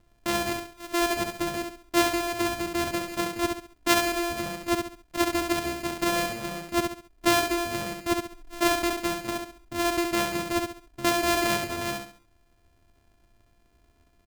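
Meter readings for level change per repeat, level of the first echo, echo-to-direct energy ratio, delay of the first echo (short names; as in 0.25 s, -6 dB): -9.0 dB, -5.0 dB, -4.5 dB, 68 ms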